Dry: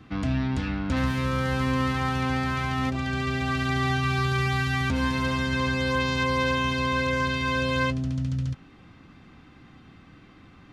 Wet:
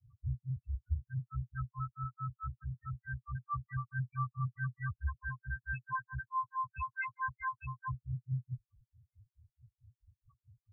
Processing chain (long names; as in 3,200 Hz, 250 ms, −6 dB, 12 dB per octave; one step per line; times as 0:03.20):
granular cloud 153 ms, grains 4.6 per second, spray 12 ms, pitch spread up and down by 0 semitones
Chebyshev band-stop filter 120–1,100 Hz, order 3
spectral peaks only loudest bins 2
level +1.5 dB